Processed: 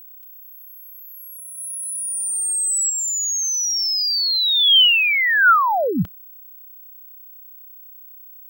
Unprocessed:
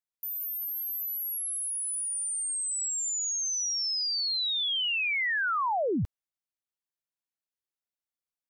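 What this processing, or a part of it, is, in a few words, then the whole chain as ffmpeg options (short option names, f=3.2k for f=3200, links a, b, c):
old television with a line whistle: -filter_complex "[0:a]asettb=1/sr,asplit=3[a][b][c];[a]atrim=end=1.584[d];[b]atrim=start=1.58:end=2.9,asetpts=PTS-STARTPTS,afade=t=in:d=0.004:c=qsin,afade=t=out:st=1.316:d=0.004:c=qsin,tiltshelf=f=1.2k:g=-4.5[e];[c]atrim=start=2.896[f];[d][e]acrossfade=d=0.004:c1=hsin:c2=qsin[g];[g][f]acrossfade=d=0.004:c1=qsin:c2=hsin,highpass=170,equalizer=f=180:t=q:w=4:g=8,equalizer=f=340:t=q:w=4:g=-7,equalizer=f=1.4k:t=q:w=4:g=9,equalizer=f=3.1k:t=q:w=4:g=9,lowpass=f=8.5k:w=0.5412,lowpass=f=8.5k:w=1.3066,aeval=exprs='val(0)+0.00398*sin(2*PI*15734*n/s)':c=same,volume=8.5dB"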